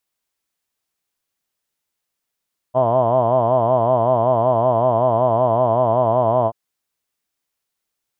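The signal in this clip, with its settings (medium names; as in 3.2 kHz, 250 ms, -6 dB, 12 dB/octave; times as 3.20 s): formant vowel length 3.78 s, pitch 122 Hz, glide -0.5 st, vibrato depth 1.25 st, F1 650 Hz, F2 1 kHz, F3 3.1 kHz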